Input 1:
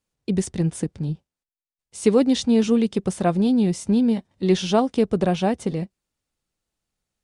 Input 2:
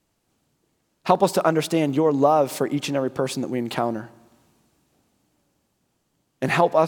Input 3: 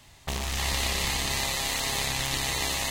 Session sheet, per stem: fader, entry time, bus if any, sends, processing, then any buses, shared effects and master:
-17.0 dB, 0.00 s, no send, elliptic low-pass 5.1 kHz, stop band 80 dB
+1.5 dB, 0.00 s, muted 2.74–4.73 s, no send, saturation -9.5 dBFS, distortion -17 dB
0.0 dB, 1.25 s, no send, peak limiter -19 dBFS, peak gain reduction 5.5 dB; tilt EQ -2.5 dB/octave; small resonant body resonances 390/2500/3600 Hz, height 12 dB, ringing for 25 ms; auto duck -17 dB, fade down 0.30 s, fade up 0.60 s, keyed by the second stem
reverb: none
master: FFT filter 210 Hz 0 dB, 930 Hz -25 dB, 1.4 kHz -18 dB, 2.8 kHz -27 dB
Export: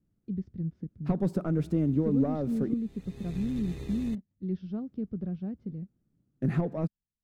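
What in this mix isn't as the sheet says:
stem 1 -17.0 dB -> -9.5 dB; stem 3: missing tilt EQ -2.5 dB/octave

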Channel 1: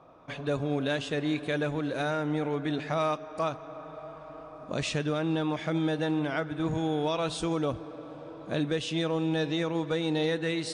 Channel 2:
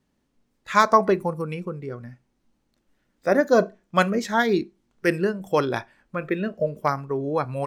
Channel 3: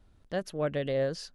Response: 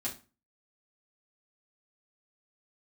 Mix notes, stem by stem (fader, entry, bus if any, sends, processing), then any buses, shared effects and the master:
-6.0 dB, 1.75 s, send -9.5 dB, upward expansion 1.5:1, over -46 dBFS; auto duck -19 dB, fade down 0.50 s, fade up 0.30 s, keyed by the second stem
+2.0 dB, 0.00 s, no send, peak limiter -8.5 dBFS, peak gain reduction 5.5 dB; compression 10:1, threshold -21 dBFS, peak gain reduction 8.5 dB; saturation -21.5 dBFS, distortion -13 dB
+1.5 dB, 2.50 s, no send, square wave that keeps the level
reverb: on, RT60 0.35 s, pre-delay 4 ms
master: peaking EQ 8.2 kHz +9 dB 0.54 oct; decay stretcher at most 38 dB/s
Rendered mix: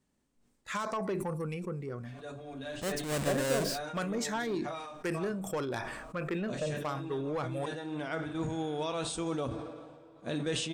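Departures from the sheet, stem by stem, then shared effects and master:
stem 2 +2.0 dB -> -6.0 dB; stem 3 +1.5 dB -> -8.0 dB

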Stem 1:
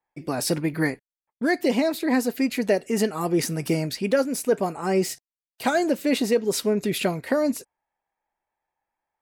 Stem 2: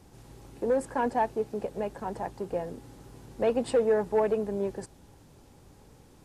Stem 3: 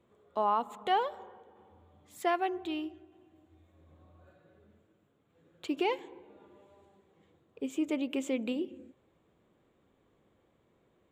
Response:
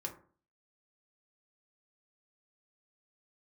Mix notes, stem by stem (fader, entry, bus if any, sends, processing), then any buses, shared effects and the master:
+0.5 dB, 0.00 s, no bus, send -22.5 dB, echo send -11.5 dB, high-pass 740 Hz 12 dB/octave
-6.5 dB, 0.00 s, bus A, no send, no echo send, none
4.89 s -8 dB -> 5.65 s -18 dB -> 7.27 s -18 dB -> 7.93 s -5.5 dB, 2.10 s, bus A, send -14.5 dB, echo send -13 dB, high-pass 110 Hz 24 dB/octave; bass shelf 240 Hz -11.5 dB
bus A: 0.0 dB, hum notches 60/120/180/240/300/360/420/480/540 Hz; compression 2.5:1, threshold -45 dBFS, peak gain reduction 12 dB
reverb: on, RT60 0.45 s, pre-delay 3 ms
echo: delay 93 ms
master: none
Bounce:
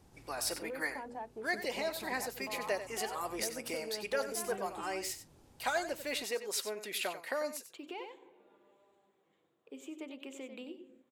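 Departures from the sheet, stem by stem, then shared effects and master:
stem 1 +0.5 dB -> -7.5 dB; reverb return -8.0 dB

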